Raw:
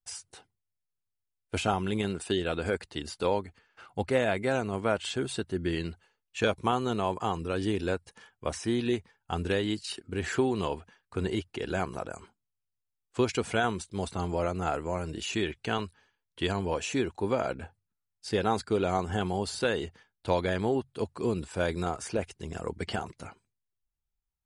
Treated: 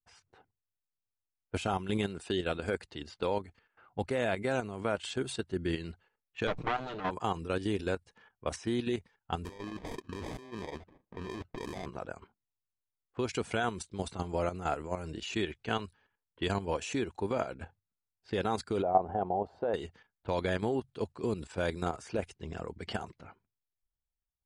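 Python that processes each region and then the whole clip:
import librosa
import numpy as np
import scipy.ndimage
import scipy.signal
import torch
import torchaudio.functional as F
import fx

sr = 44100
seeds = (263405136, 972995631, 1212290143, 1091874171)

y = fx.chain(x, sr, fx.lower_of_two(delay_ms=6.6),
    fx.air_absorb(metres=170.0),
    fx.sustainer(db_per_s=73.0), at=(6.47, 7.11))
y = fx.chain(y, sr, fx.low_shelf(hz=90.0, db=-7.5),
    fx.over_compress(threshold_db=-37.0, ratio=-1.0),
    fx.sample_hold(seeds[0], rate_hz=1400.0, jitter_pct=0), at=(9.45, 11.86))
y = fx.chain(y, sr, fx.lowpass_res(hz=710.0, q=3.1),
    fx.tilt_eq(slope=2.0), at=(18.82, 19.74))
y = fx.env_lowpass(y, sr, base_hz=1200.0, full_db=-28.0)
y = fx.level_steps(y, sr, step_db=10)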